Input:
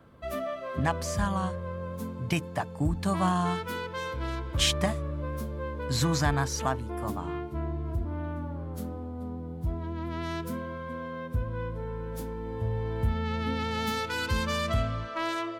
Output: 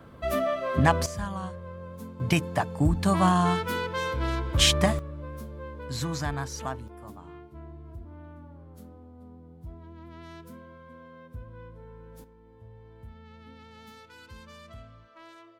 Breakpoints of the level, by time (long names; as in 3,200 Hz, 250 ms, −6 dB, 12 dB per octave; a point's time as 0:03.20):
+6.5 dB
from 0:01.06 −5 dB
from 0:02.20 +4.5 dB
from 0:04.99 −5 dB
from 0:06.88 −11.5 dB
from 0:12.24 −19 dB